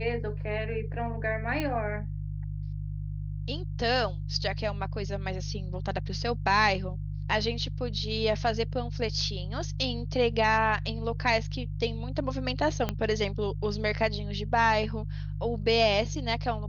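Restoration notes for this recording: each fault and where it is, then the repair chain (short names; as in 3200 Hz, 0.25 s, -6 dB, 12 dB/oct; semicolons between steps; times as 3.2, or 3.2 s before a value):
hum 50 Hz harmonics 3 -34 dBFS
1.6 pop -17 dBFS
12.89 pop -14 dBFS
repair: de-click; de-hum 50 Hz, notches 3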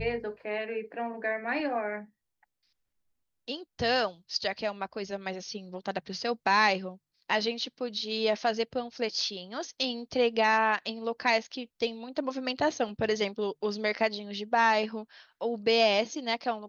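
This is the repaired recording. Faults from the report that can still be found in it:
12.89 pop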